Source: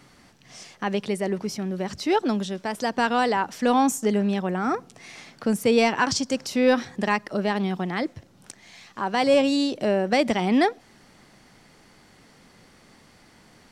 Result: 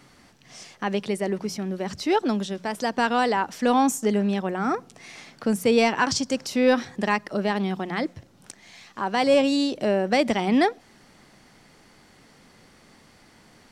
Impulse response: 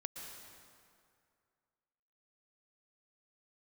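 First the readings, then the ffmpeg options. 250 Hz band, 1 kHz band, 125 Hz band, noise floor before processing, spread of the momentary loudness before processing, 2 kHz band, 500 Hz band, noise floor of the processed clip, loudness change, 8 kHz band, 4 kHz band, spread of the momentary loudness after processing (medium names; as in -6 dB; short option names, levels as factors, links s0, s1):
0.0 dB, 0.0 dB, -1.0 dB, -55 dBFS, 10 LU, 0.0 dB, 0.0 dB, -55 dBFS, 0.0 dB, 0.0 dB, 0.0 dB, 10 LU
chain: -af "bandreject=f=60:t=h:w=6,bandreject=f=120:t=h:w=6,bandreject=f=180:t=h:w=6"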